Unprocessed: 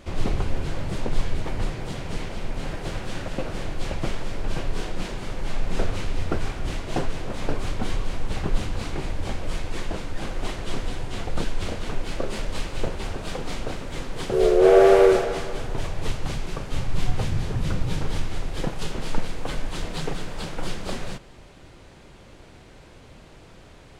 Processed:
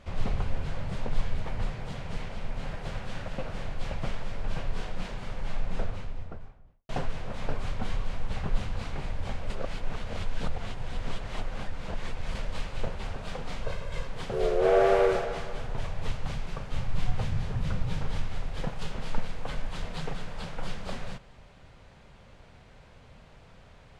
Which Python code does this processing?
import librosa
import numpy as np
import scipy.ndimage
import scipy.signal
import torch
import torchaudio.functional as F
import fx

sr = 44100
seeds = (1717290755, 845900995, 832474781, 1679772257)

y = fx.studio_fade_out(x, sr, start_s=5.41, length_s=1.48)
y = fx.comb(y, sr, ms=1.9, depth=0.65, at=(13.63, 14.08))
y = fx.edit(y, sr, fx.reverse_span(start_s=9.5, length_s=2.85), tone=tone)
y = fx.lowpass(y, sr, hz=3500.0, slope=6)
y = fx.peak_eq(y, sr, hz=330.0, db=-11.5, octaves=0.56)
y = F.gain(torch.from_numpy(y), -4.0).numpy()